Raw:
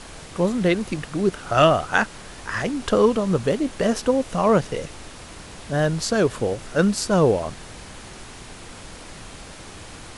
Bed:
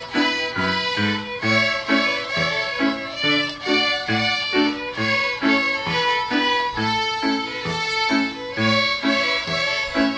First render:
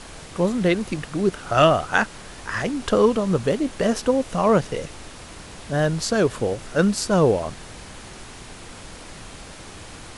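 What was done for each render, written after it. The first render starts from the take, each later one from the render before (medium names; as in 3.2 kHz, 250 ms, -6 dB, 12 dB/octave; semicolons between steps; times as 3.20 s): no audible change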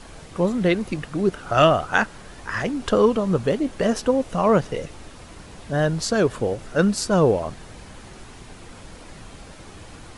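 noise reduction 6 dB, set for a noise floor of -41 dBFS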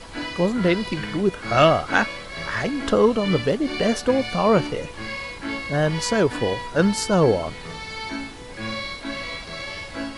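add bed -11.5 dB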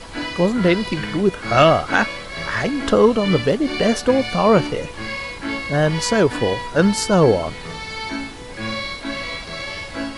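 trim +3.5 dB; peak limiter -2 dBFS, peak gain reduction 3 dB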